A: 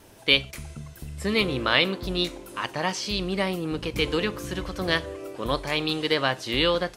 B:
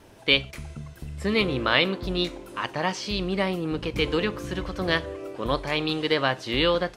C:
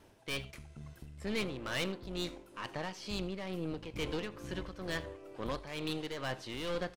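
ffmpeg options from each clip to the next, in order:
-af "lowpass=f=3900:p=1,volume=1.12"
-af "aeval=exprs='(tanh(15.8*val(0)+0.55)-tanh(0.55))/15.8':c=same,tremolo=f=2.2:d=0.54,aecho=1:1:81:0.075,volume=0.501"

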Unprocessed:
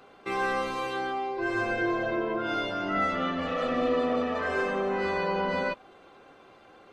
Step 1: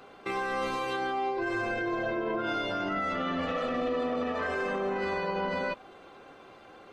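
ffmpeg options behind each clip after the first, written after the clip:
-af "alimiter=level_in=1.19:limit=0.0631:level=0:latency=1:release=47,volume=0.841,volume=1.33"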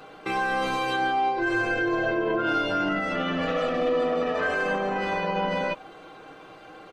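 -af "aecho=1:1:6.4:0.51,volume=1.68"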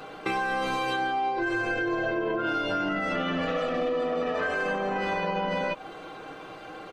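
-af "acompressor=threshold=0.0355:ratio=6,volume=1.58"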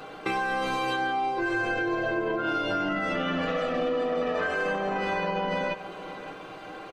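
-af "aecho=1:1:566|1132|1698|2264:0.168|0.0739|0.0325|0.0143"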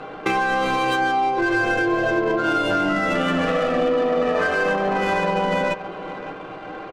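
-af "adynamicsmooth=sensitivity=6:basefreq=2200,volume=2.37"

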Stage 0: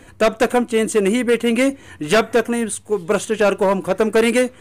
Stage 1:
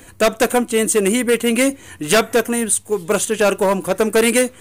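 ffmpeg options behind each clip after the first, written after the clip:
-af "aemphasis=mode=production:type=50kf"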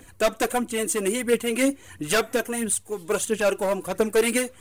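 -af "aphaser=in_gain=1:out_gain=1:delay=4:decay=0.47:speed=1.5:type=triangular,volume=0.376"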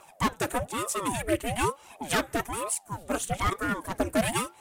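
-af "equalizer=f=1500:t=o:w=0.77:g=2.5,aeval=exprs='val(0)*sin(2*PI*500*n/s+500*0.75/1.1*sin(2*PI*1.1*n/s))':c=same,volume=0.75"

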